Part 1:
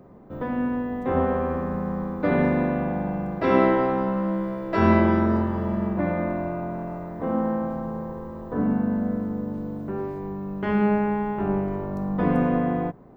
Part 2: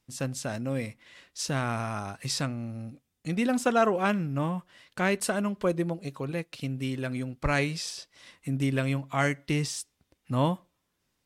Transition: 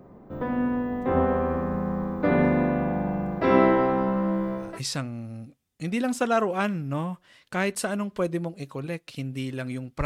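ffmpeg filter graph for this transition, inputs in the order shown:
-filter_complex "[0:a]apad=whole_dur=10.05,atrim=end=10.05,atrim=end=4.8,asetpts=PTS-STARTPTS[a];[1:a]atrim=start=2.01:end=7.5,asetpts=PTS-STARTPTS[b];[a][b]acrossfade=d=0.24:c1=tri:c2=tri"

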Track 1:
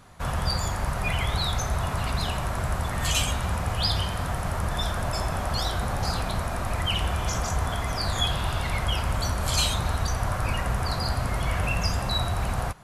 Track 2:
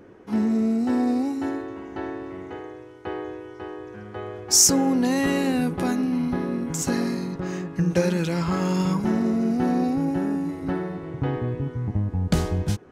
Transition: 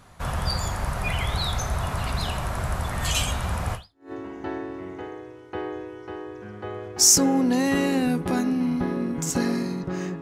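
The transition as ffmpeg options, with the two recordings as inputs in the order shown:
-filter_complex "[0:a]apad=whole_dur=10.21,atrim=end=10.21,atrim=end=4.12,asetpts=PTS-STARTPTS[a];[1:a]atrim=start=1.26:end=7.73,asetpts=PTS-STARTPTS[b];[a][b]acrossfade=d=0.38:c1=exp:c2=exp"

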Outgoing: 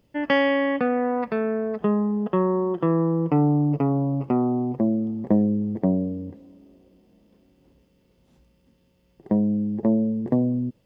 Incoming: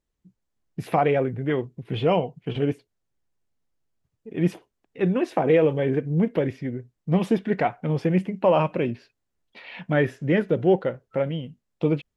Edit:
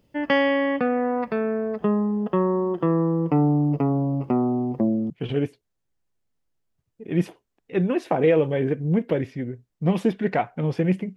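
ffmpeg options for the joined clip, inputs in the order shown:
-filter_complex "[0:a]apad=whole_dur=11.16,atrim=end=11.16,atrim=end=5.102[a];[1:a]atrim=start=2.358:end=8.42[b];[a][b]acrossfade=d=0.004:c1=hsin:c2=hsin"

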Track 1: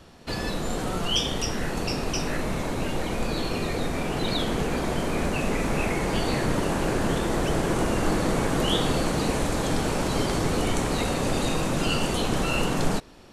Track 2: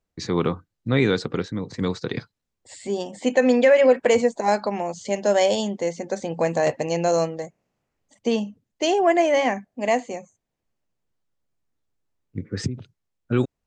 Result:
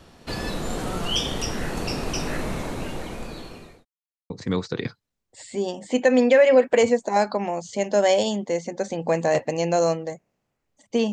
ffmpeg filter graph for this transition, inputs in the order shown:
-filter_complex "[0:a]apad=whole_dur=11.12,atrim=end=11.12,asplit=2[a][b];[a]atrim=end=3.85,asetpts=PTS-STARTPTS,afade=t=out:st=2.43:d=1.42[c];[b]atrim=start=3.85:end=4.3,asetpts=PTS-STARTPTS,volume=0[d];[1:a]atrim=start=1.62:end=8.44,asetpts=PTS-STARTPTS,afade=t=in:d=0.004:c=hsin[e];[c][d][e]concat=n=3:v=0:a=1"

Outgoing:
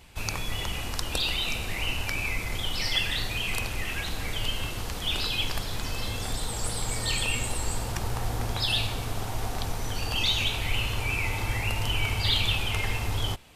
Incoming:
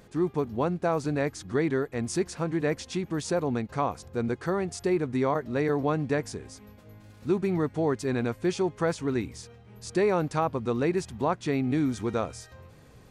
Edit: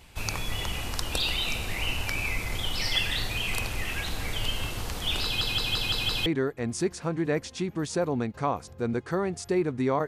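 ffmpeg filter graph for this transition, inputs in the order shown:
-filter_complex "[0:a]apad=whole_dur=10.07,atrim=end=10.07,asplit=6[a][b][c][d][e][f];[a]atrim=end=5.412[g];[b]atrim=start=5.238:end=5.412[h];[c]atrim=start=5.238:end=5.412[i];[d]atrim=start=5.238:end=5.412[j];[e]atrim=start=5.238:end=5.412[k];[f]atrim=start=5.238:end=5.412[l];[1:a]atrim=start=1.608:end=5.42[m];[g][h]acrossfade=d=0.004:c1=hsin:c2=hsin[n];[n][i]acrossfade=d=0.004:c1=hsin:c2=hsin[o];[o][j]acrossfade=d=0.004:c1=hsin:c2=hsin[p];[p][k]acrossfade=d=0.004:c1=hsin:c2=hsin[q];[q][l]acrossfade=d=0.004:c1=hsin:c2=hsin[r];[r][m]acrossfade=d=0.004:c1=hsin:c2=hsin"

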